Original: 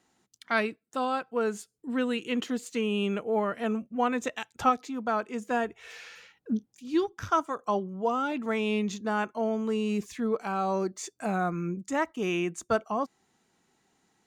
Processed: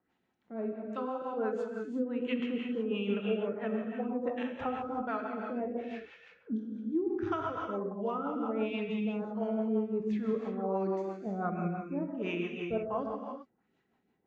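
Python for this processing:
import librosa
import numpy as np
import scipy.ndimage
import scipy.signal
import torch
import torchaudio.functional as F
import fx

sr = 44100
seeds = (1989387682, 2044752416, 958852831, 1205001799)

y = fx.filter_lfo_lowpass(x, sr, shape='sine', hz=1.4, low_hz=430.0, high_hz=2900.0, q=1.3)
y = fx.rev_gated(y, sr, seeds[0], gate_ms=410, shape='flat', drr_db=0.0)
y = fx.rotary(y, sr, hz=6.0)
y = y * 10.0 ** (-6.0 / 20.0)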